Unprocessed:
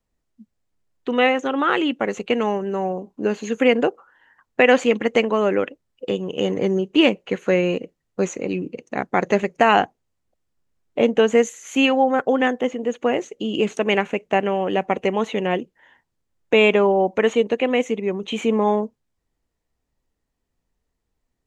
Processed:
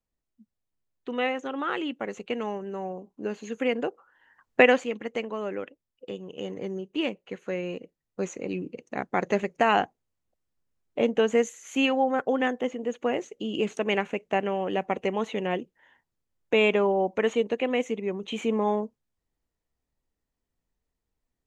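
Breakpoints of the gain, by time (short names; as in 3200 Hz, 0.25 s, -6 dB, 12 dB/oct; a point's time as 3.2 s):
3.86 s -10 dB
4.61 s -1 dB
4.86 s -13 dB
7.57 s -13 dB
8.57 s -6.5 dB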